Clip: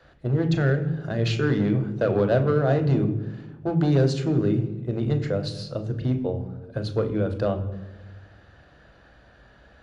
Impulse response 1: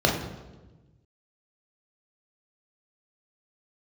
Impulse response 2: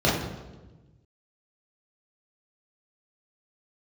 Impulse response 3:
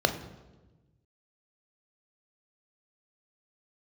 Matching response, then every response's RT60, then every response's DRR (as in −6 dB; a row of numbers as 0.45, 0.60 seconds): 3; 1.2, 1.2, 1.2 seconds; −1.0, −7.5, 6.5 decibels